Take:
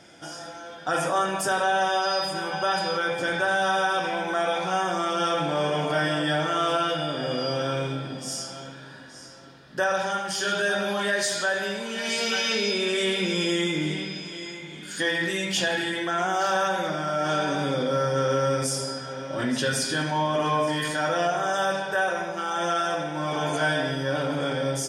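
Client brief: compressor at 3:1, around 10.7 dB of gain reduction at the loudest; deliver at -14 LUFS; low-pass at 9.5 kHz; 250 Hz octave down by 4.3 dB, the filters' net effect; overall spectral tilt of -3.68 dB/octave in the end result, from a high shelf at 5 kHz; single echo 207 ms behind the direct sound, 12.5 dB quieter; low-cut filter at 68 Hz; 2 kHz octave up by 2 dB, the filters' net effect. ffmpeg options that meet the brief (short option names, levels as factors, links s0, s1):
-af "highpass=68,lowpass=9500,equalizer=f=250:t=o:g=-6.5,equalizer=f=2000:t=o:g=4,highshelf=f=5000:g=-8.5,acompressor=threshold=0.0178:ratio=3,aecho=1:1:207:0.237,volume=10.6"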